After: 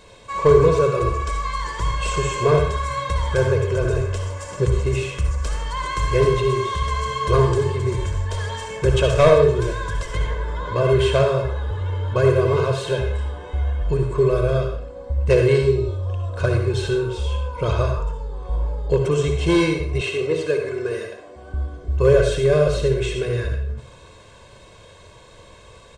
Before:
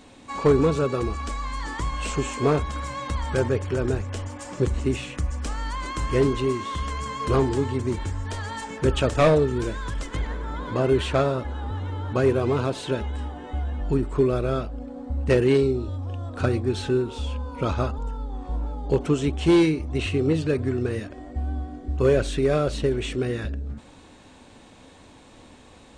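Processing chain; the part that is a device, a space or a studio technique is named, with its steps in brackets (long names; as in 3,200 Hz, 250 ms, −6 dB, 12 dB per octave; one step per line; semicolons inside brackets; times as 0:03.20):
microphone above a desk (comb filter 1.9 ms, depth 87%; convolution reverb RT60 0.55 s, pre-delay 56 ms, DRR 3.5 dB)
0:20.01–0:21.54: high-pass filter 270 Hz 12 dB per octave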